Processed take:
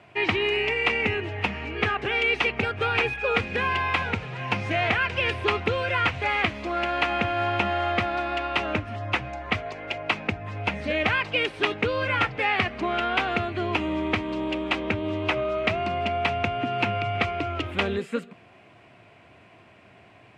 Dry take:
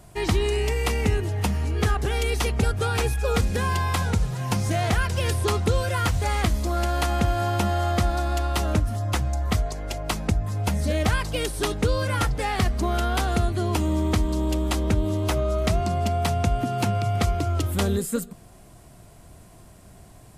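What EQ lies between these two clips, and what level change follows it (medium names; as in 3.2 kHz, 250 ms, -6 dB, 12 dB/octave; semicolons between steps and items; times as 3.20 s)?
high-pass 110 Hz 24 dB/octave; resonant low-pass 2.5 kHz, resonance Q 3.6; peaking EQ 160 Hz -9 dB 0.93 oct; 0.0 dB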